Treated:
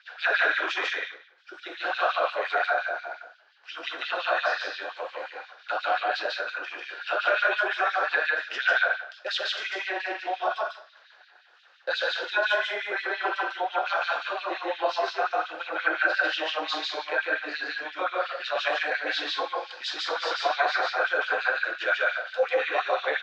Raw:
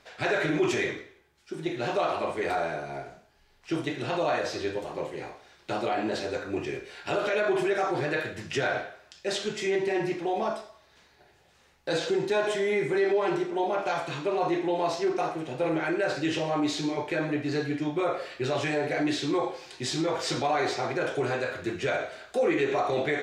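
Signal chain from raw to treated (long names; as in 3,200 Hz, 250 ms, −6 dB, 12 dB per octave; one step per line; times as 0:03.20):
auto-filter high-pass sine 5.7 Hz 500–3,600 Hz
loudspeaker in its box 380–4,600 Hz, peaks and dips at 400 Hz −9 dB, 620 Hz −4 dB, 910 Hz −5 dB, 1,500 Hz +9 dB, 2,100 Hz −6 dB
loudspeakers that aren't time-aligned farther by 50 metres −1 dB, 65 metres −10 dB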